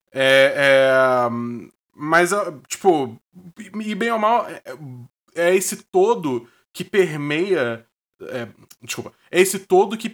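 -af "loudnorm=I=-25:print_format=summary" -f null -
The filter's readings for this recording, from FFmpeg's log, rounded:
Input Integrated:    -19.0 LUFS
Input True Peak:      -2.9 dBTP
Input LRA:             5.2 LU
Input Threshold:     -30.4 LUFS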